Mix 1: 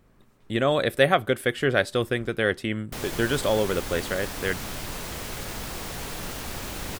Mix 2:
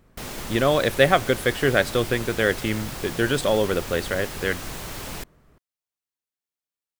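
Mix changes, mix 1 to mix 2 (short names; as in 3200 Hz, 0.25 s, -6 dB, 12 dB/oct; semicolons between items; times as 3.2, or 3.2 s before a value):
background: entry -2.75 s; reverb: on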